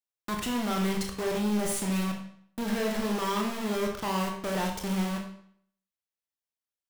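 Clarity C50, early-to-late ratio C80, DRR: 4.5 dB, 8.5 dB, 1.0 dB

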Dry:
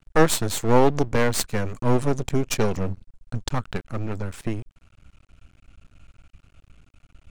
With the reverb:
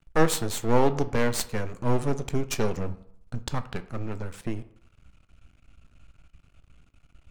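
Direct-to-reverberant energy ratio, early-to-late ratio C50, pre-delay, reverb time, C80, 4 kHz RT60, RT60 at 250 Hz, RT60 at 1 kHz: 11.0 dB, 16.0 dB, 10 ms, 0.65 s, 19.0 dB, 0.35 s, 0.65 s, 0.65 s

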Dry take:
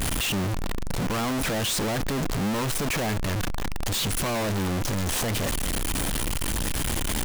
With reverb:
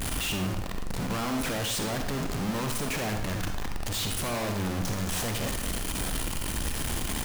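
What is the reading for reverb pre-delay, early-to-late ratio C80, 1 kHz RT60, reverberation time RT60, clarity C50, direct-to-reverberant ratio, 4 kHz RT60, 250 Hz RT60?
40 ms, 8.0 dB, 0.70 s, 0.70 s, 5.0 dB, 4.0 dB, 0.65 s, 0.65 s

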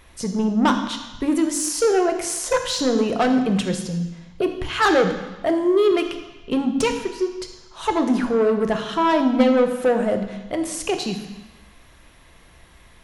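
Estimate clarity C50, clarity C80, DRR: 8.0 dB, 10.0 dB, 6.0 dB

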